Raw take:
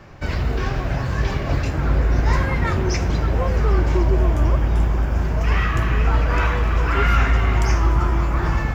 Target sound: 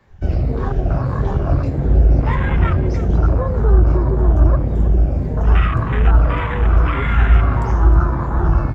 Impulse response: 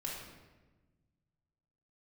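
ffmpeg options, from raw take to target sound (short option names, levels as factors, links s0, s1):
-filter_complex "[0:a]afftfilt=real='re*pow(10,7/40*sin(2*PI*(0.99*log(max(b,1)*sr/1024/100)/log(2)-(-1.7)*(pts-256)/sr)))':imag='im*pow(10,7/40*sin(2*PI*(0.99*log(max(b,1)*sr/1024/100)/log(2)-(-1.7)*(pts-256)/sr)))':win_size=1024:overlap=0.75,afwtdn=0.0631,acrossover=split=210[s0][s1];[s1]acompressor=threshold=0.0562:ratio=6[s2];[s0][s2]amix=inputs=2:normalize=0,asplit=2[s3][s4];[s4]aecho=0:1:318:0.2[s5];[s3][s5]amix=inputs=2:normalize=0,volume=1.58"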